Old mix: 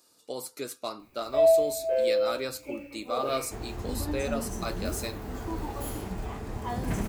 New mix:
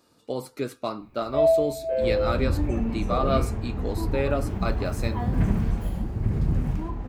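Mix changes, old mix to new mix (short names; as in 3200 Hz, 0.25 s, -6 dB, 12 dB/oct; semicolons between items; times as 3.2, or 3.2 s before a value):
speech +5.0 dB; second sound: entry -1.50 s; master: add tone controls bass +10 dB, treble -13 dB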